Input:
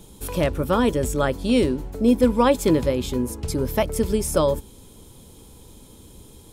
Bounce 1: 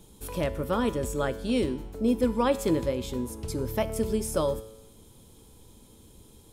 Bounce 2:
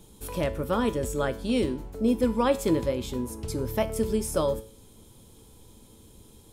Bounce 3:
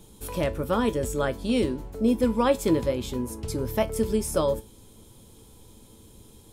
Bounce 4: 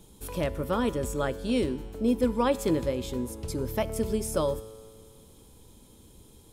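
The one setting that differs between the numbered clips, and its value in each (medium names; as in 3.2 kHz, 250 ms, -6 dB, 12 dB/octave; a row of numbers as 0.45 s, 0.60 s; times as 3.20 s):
feedback comb, decay: 0.94 s, 0.44 s, 0.2 s, 2 s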